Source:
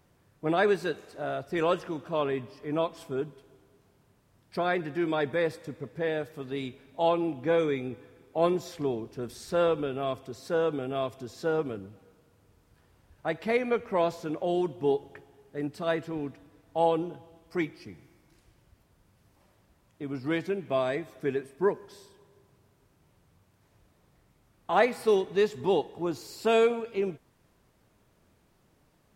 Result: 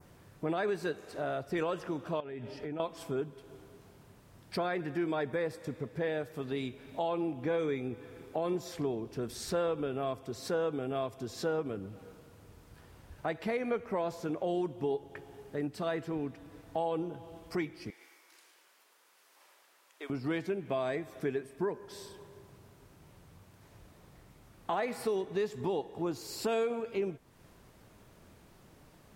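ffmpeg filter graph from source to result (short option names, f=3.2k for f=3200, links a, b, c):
-filter_complex "[0:a]asettb=1/sr,asplit=3[a][b][c];[a]atrim=end=2.204[d];[b]atrim=start=2.2:end=2.8,asetpts=PTS-STARTPTS,afade=t=in:d=0.004:c=qsin,afade=t=out:st=0.596:d=0.004:c=qsin,highshelf=f=8.4k:g=-11,acompressor=threshold=-39dB:ratio=5:attack=3.2:release=140:knee=1:detection=peak,asuperstop=centerf=1100:order=8:qfactor=5.2[e];[c]atrim=start=2.796[f];[d][e]acrossfade=d=0.004:c1=hsin:c2=qsin[g];[g][f]acrossfade=d=0.004:c1=qsin:c2=hsin,asettb=1/sr,asplit=3[h][i][j];[h]atrim=end=17.904[k];[i]atrim=start=17.9:end=20.1,asetpts=PTS-STARTPTS,afade=t=in:d=0.004:c=qsin,afade=t=out:st=2.196:d=0.004:c=qsin,highpass=f=490:w=0.5412,highpass=f=490:w=1.3066,equalizer=f=620:w=1.3:g=-9,aecho=1:1:108:0.398,atrim=end_sample=97020[l];[j]atrim=start=20.096[m];[k][l]acrossfade=d=0.004:c1=hsin:c2=qsin[n];[n][m]acrossfade=d=0.004:c1=qsin:c2=hsin,adynamicequalizer=threshold=0.00316:dfrequency=3300:dqfactor=1.2:tfrequency=3300:tqfactor=1.2:attack=5:release=100:ratio=0.375:range=2.5:mode=cutabove:tftype=bell,alimiter=limit=-18.5dB:level=0:latency=1:release=64,acompressor=threshold=-47dB:ratio=2,volume=7.5dB"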